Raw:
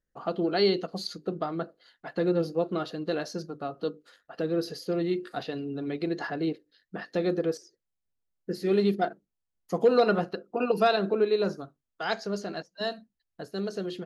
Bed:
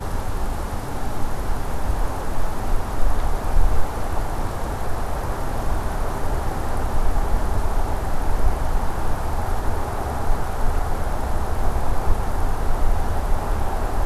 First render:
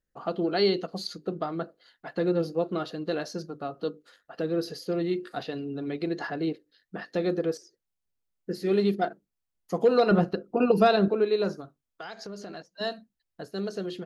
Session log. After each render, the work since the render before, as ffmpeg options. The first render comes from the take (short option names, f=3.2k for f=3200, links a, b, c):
-filter_complex "[0:a]asettb=1/sr,asplit=3[a][b][c];[a]atrim=end=10.114[d];[b]atrim=start=10.11:end=11.08,asetpts=PTS-STARTPTS,afade=t=in:d=0.004:c=qsin,afade=t=out:st=0.966:d=0.004:c=qsin,lowshelf=f=340:g=10.5[e];[c]atrim=start=11.076[f];[d][e]acrossfade=d=0.004:c1=hsin:c2=qsin[g];[g][f]acrossfade=d=0.004:c1=qsin:c2=hsin,asettb=1/sr,asplit=3[h][i][j];[h]atrim=end=11.604[k];[i]atrim=start=11.6:end=12.66,asetpts=PTS-STARTPTS,afade=t=in:d=0.004:c=qsin,afade=t=out:st=1.056:d=0.004:c=qsin,acompressor=threshold=-35dB:ratio=12:attack=3.2:release=140:knee=1:detection=peak[l];[j]atrim=start=12.656[m];[k][l]acrossfade=d=0.004:c1=hsin:c2=qsin[n];[n][m]acrossfade=d=0.004:c1=qsin:c2=hsin"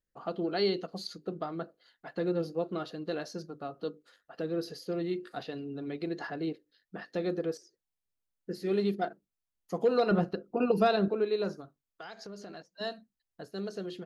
-af "volume=-5dB"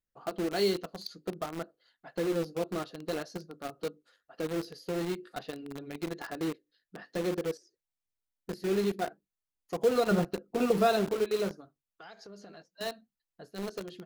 -filter_complex "[0:a]flanger=delay=0.7:depth=7.3:regen=-64:speed=0.5:shape=triangular,asplit=2[a][b];[b]acrusher=bits=5:mix=0:aa=0.000001,volume=-4dB[c];[a][c]amix=inputs=2:normalize=0"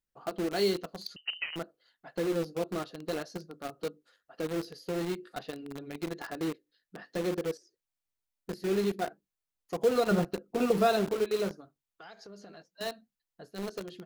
-filter_complex "[0:a]asettb=1/sr,asplit=3[a][b][c];[a]atrim=end=1.164[d];[b]atrim=start=1.16:end=1.56,asetpts=PTS-STARTPTS,afade=t=in:d=0.004:c=qsin,afade=t=out:st=0.396:d=0.004:c=qsin,lowpass=f=2.7k:t=q:w=0.5098,lowpass=f=2.7k:t=q:w=0.6013,lowpass=f=2.7k:t=q:w=0.9,lowpass=f=2.7k:t=q:w=2.563,afreqshift=-3200[e];[c]atrim=start=1.556[f];[d][e]acrossfade=d=0.004:c1=hsin:c2=qsin[g];[g][f]acrossfade=d=0.004:c1=qsin:c2=hsin"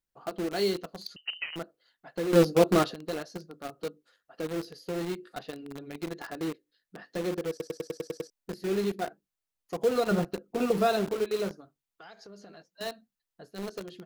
-filter_complex "[0:a]asplit=11[a][b][c][d][e][f][g][h][i][j][k];[a]atrim=end=2.332[l];[b]atrim=start=2.328:end=2.942,asetpts=PTS-STARTPTS,volume=12dB[m];[c]atrim=start=2.938:end=7.602[n];[d]atrim=start=7.498:end=7.602[o];[e]atrim=start=7.498:end=7.602[p];[f]atrim=start=7.498:end=7.602[q];[g]atrim=start=7.498:end=7.602[r];[h]atrim=start=7.498:end=7.602[s];[i]atrim=start=7.498:end=7.602[t];[j]atrim=start=7.498:end=7.602[u];[k]atrim=start=8.298[v];[l][m]acrossfade=d=0.004:c1=hsin:c2=hsin[w];[w][n]acrossfade=d=0.004:c1=hsin:c2=hsin[x];[x][o]acrossfade=d=0.004:c1=hsin:c2=hsin[y];[y][p]acrossfade=d=0.004:c1=hsin:c2=hsin[z];[z][q]acrossfade=d=0.004:c1=hsin:c2=hsin[aa];[aa][r]acrossfade=d=0.004:c1=hsin:c2=hsin[ab];[ab][s]acrossfade=d=0.004:c1=hsin:c2=hsin[ac];[ac][t]acrossfade=d=0.004:c1=hsin:c2=hsin[ad];[ad][u]acrossfade=d=0.004:c1=hsin:c2=hsin[ae];[ae][v]acrossfade=d=0.004:c1=hsin:c2=hsin"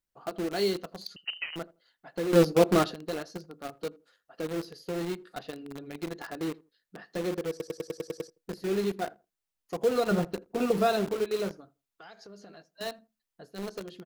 -filter_complex "[0:a]asplit=2[a][b];[b]adelay=82,lowpass=f=1k:p=1,volume=-21.5dB,asplit=2[c][d];[d]adelay=82,lowpass=f=1k:p=1,volume=0.23[e];[a][c][e]amix=inputs=3:normalize=0"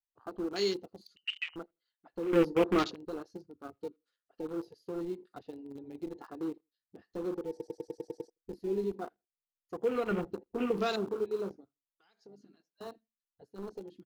-af "afwtdn=0.0112,equalizer=f=160:t=o:w=0.67:g=-11,equalizer=f=630:t=o:w=0.67:g=-11,equalizer=f=1.6k:t=o:w=0.67:g=-4"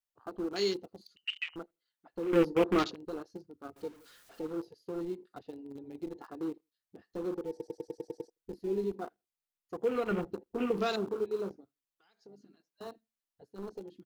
-filter_complex "[0:a]asettb=1/sr,asplit=3[a][b][c];[a]atrim=end=3.764[d];[b]atrim=start=3.76:end=4.51,asetpts=PTS-STARTPTS,afade=t=in:d=0.004:c=qsin,afade=t=out:st=0.746:d=0.004:c=qsin,aeval=exprs='val(0)+0.5*0.00266*sgn(val(0))':c=same[e];[c]atrim=start=4.506[f];[d][e]acrossfade=d=0.004:c1=hsin:c2=qsin[g];[g][f]acrossfade=d=0.004:c1=qsin:c2=hsin"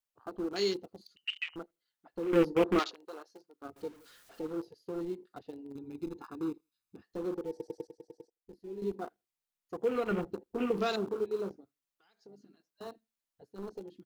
-filter_complex "[0:a]asettb=1/sr,asplit=3[a][b][c];[a]atrim=end=2.794[d];[b]atrim=start=2.79:end=3.62,asetpts=PTS-STARTPTS,afade=t=in:d=0.004:c=qsin,afade=t=out:st=0.826:d=0.004:c=qsin,highpass=600[e];[c]atrim=start=3.616[f];[d][e]acrossfade=d=0.004:c1=hsin:c2=qsin[g];[g][f]acrossfade=d=0.004:c1=qsin:c2=hsin,asettb=1/sr,asplit=3[h][i][j];[h]atrim=end=5.754[k];[i]atrim=start=5.75:end=7.03,asetpts=PTS-STARTPTS,afade=t=in:d=0.004:c=qsin,afade=t=out:st=1.276:d=0.004:c=qsin,aecho=1:1:0.8:0.65,atrim=end_sample=56448[l];[j]atrim=start=7.026[m];[k][l]acrossfade=d=0.004:c1=hsin:c2=qsin[n];[n][m]acrossfade=d=0.004:c1=qsin:c2=hsin,asplit=3[o][p][q];[o]atrim=end=7.872[r];[p]atrim=start=7.868:end=8.822,asetpts=PTS-STARTPTS,volume=-10dB[s];[q]atrim=start=8.818[t];[r][s]acrossfade=d=0.004:c1=hsin:c2=hsin[u];[u][t]acrossfade=d=0.004:c1=hsin:c2=hsin"